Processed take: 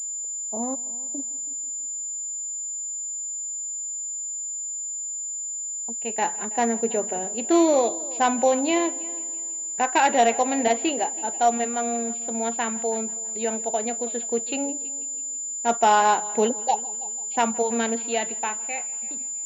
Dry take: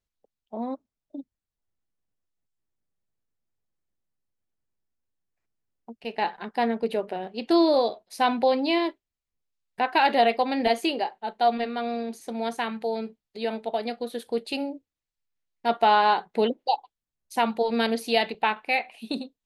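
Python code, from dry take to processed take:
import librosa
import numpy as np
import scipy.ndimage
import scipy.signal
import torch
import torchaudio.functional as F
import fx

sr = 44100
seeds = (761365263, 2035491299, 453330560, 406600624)

p1 = fx.fade_out_tail(x, sr, length_s=2.1)
p2 = scipy.signal.sosfilt(scipy.signal.butter(4, 120.0, 'highpass', fs=sr, output='sos'), p1)
p3 = p2 + fx.echo_heads(p2, sr, ms=163, heads='first and second', feedback_pct=41, wet_db=-22.5, dry=0)
p4 = fx.pwm(p3, sr, carrier_hz=7100.0)
y = p4 * librosa.db_to_amplitude(1.5)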